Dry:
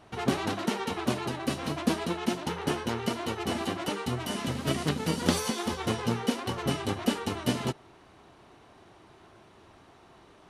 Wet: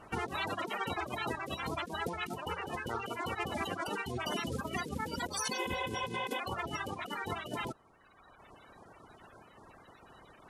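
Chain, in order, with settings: coarse spectral quantiser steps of 30 dB; reverb removal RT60 1.3 s; spectral replace 5.57–6.37 s, 500–3700 Hz before; compressor with a negative ratio -36 dBFS, ratio -1; trim -1 dB

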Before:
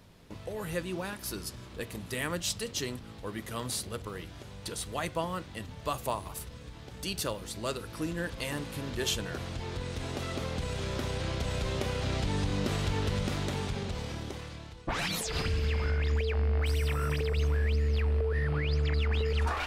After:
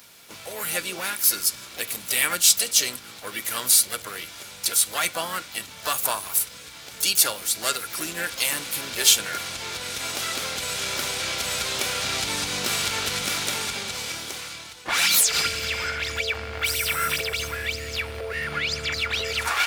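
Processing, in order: tilt EQ +4.5 dB/octave; small resonant body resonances 1.4/2.3 kHz, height 12 dB, ringing for 65 ms; harmony voices +3 st -10 dB, +7 st -9 dB; trim +4.5 dB

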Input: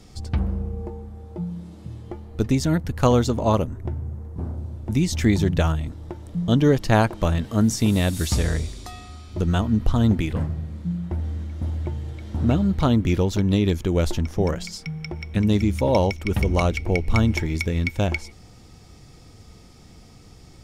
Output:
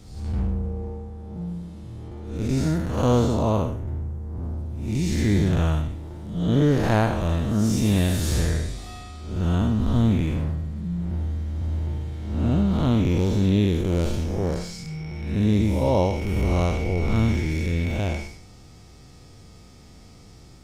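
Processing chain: spectral blur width 206 ms; trim +1.5 dB; Opus 20 kbps 48 kHz

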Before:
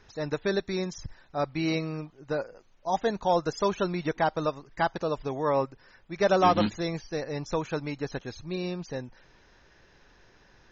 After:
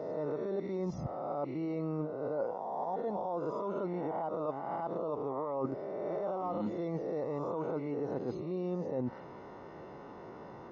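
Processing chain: reverse spectral sustain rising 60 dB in 0.84 s; high-pass 170 Hz 12 dB/octave; in parallel at -1 dB: gain riding within 3 dB; on the sum: peak limiter -15.5 dBFS, peak gain reduction 11 dB; reverse; compression 16:1, threshold -38 dBFS, peak gain reduction 18.5 dB; reverse; Savitzky-Golay filter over 65 samples; trim +6.5 dB

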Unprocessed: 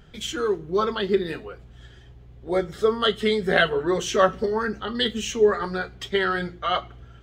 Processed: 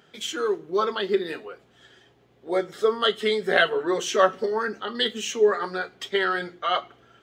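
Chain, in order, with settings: high-pass 300 Hz 12 dB/octave

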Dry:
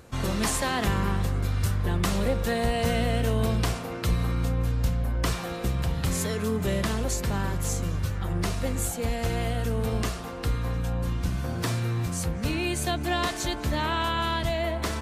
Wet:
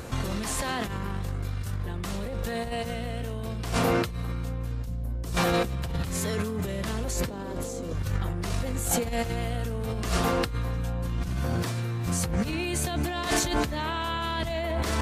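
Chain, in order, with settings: 7.28–7.93 s: graphic EQ 125/250/500/1000/4000/8000 Hz -5/+12/+12/+3/+5/+3 dB; compressor with a negative ratio -34 dBFS, ratio -1; 4.86–5.37 s: peaking EQ 1.9 kHz -12 dB 2.9 oct; trim +4.5 dB

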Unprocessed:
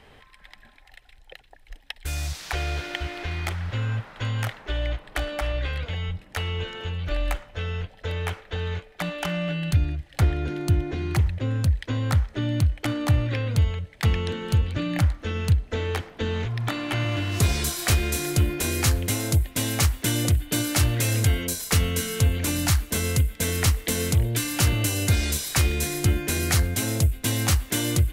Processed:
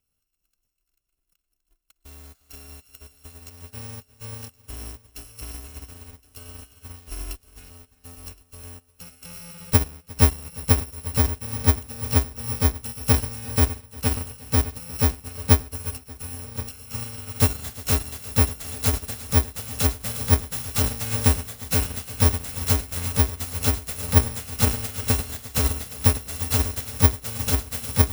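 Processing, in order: bit-reversed sample order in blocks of 128 samples; multi-head delay 356 ms, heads first and third, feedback 52%, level -9.5 dB; upward expansion 2.5:1, over -35 dBFS; trim +4.5 dB

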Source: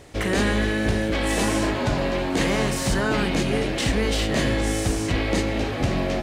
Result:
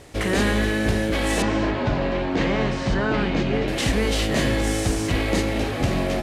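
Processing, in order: CVSD coder 64 kbps; 1.42–3.68 s: distance through air 170 m; trim +1 dB

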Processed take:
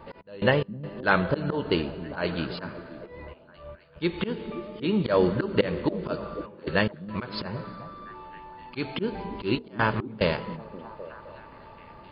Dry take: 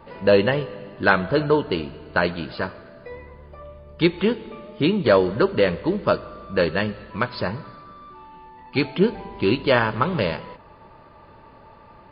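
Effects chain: slow attack 172 ms; trance gate "x.x.xxxxxxxxxxx" 72 bpm -24 dB; repeats whose band climbs or falls 261 ms, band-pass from 180 Hz, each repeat 0.7 oct, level -8.5 dB

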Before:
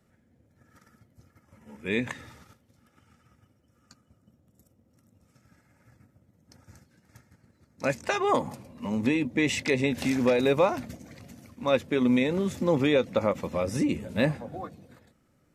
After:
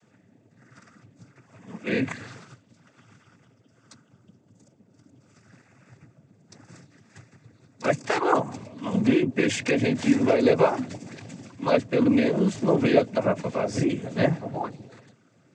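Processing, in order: dynamic bell 3.5 kHz, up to -5 dB, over -43 dBFS, Q 0.97; in parallel at +0.5 dB: compression, threshold -34 dBFS, peak gain reduction 15.5 dB; on the sum: noise-vocoded speech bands 16; trim +1.5 dB

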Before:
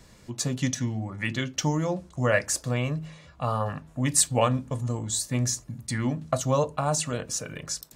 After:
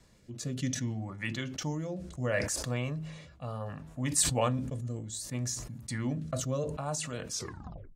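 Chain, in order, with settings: tape stop on the ending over 0.64 s; rotary cabinet horn 0.65 Hz; decay stretcher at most 55 dB/s; trim -6 dB

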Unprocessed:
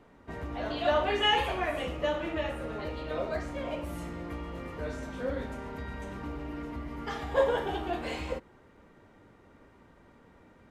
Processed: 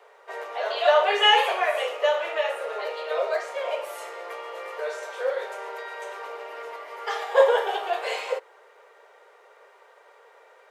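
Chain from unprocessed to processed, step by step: steep high-pass 420 Hz 72 dB/octave; trim +8 dB

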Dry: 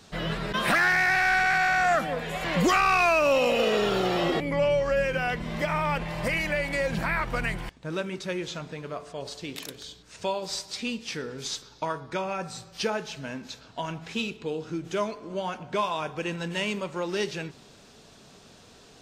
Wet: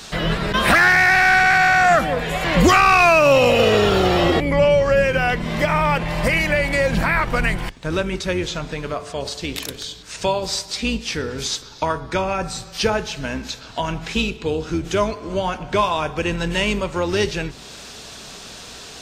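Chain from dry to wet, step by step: octave divider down 2 oct, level -4 dB; tape noise reduction on one side only encoder only; trim +8.5 dB

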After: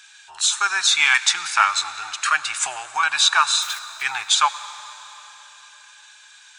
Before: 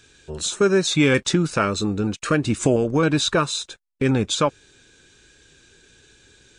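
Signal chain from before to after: 3.62–4.03 s: jump at every zero crossing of -34.5 dBFS; elliptic high-pass 820 Hz, stop band 40 dB; reverberation RT60 4.1 s, pre-delay 69 ms, DRR 14 dB; trim +7.5 dB

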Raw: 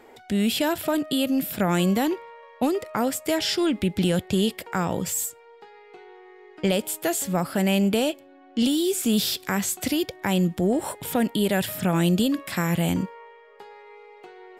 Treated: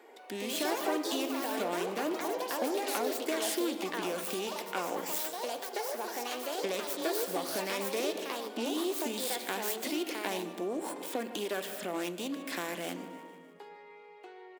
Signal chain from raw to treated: self-modulated delay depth 0.13 ms; feedback delay 151 ms, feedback 56%, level -18.5 dB; on a send at -10 dB: reverberation RT60 1.3 s, pre-delay 3 ms; on the sum: compression, threshold -23 dBFS, peak gain reduction 7.5 dB; high-pass 290 Hz 24 dB/octave; ever faster or slower copies 167 ms, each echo +4 st, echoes 3; band-stop 1.3 kHz, Q 16; trim -5 dB

